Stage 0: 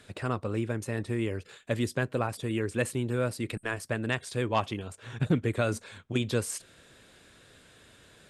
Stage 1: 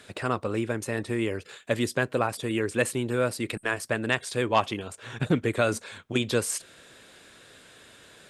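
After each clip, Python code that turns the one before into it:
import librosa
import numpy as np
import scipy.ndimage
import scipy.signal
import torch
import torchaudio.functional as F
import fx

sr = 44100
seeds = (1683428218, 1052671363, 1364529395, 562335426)

y = fx.low_shelf(x, sr, hz=170.0, db=-10.5)
y = F.gain(torch.from_numpy(y), 5.5).numpy()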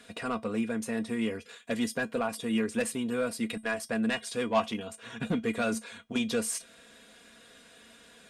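y = x + 0.58 * np.pad(x, (int(4.2 * sr / 1000.0), 0))[:len(x)]
y = 10.0 ** (-16.0 / 20.0) * np.tanh(y / 10.0 ** (-16.0 / 20.0))
y = fx.comb_fb(y, sr, f0_hz=220.0, decay_s=0.16, harmonics='odd', damping=0.0, mix_pct=70)
y = F.gain(torch.from_numpy(y), 4.0).numpy()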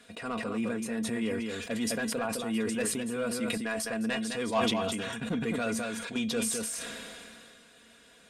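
y = x + 10.0 ** (-7.5 / 20.0) * np.pad(x, (int(209 * sr / 1000.0), 0))[:len(x)]
y = fx.sustainer(y, sr, db_per_s=23.0)
y = F.gain(torch.from_numpy(y), -3.0).numpy()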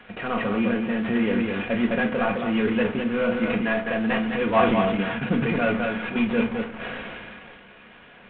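y = fx.cvsd(x, sr, bps=16000)
y = fx.room_shoebox(y, sr, seeds[0], volume_m3=330.0, walls='furnished', distance_m=1.0)
y = F.gain(torch.from_numpy(y), 8.0).numpy()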